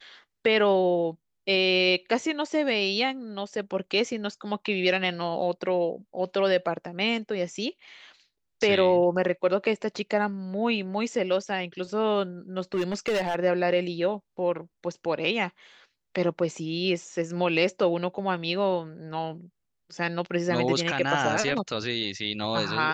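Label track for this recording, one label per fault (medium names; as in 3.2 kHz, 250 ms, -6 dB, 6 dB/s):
12.740000	13.360000	clipped -21.5 dBFS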